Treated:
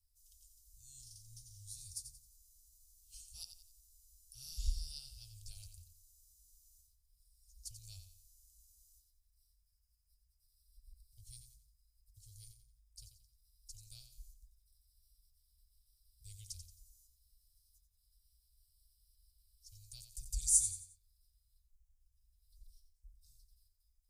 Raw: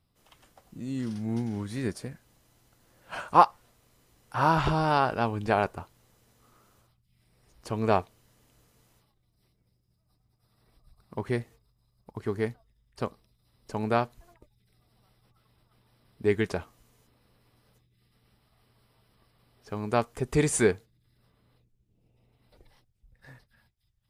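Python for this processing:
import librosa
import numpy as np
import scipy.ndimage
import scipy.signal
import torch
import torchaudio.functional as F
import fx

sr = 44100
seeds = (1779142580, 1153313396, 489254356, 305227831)

p1 = scipy.signal.sosfilt(scipy.signal.cheby2(4, 60, [180.0, 1900.0], 'bandstop', fs=sr, output='sos'), x)
p2 = p1 + fx.echo_feedback(p1, sr, ms=89, feedback_pct=35, wet_db=-9.0, dry=0)
y = p2 * 10.0 ** (2.5 / 20.0)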